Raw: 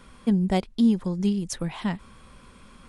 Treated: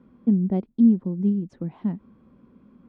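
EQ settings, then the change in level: band-pass 250 Hz, Q 1.7; air absorption 62 m; +4.0 dB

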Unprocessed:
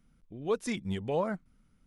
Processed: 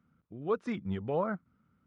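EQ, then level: HPF 75 Hz 24 dB/oct; tape spacing loss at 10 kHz 29 dB; bell 1300 Hz +9.5 dB 0.5 oct; 0.0 dB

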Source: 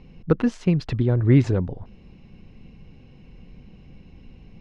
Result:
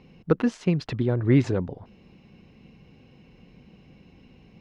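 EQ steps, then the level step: HPF 190 Hz 6 dB/oct; 0.0 dB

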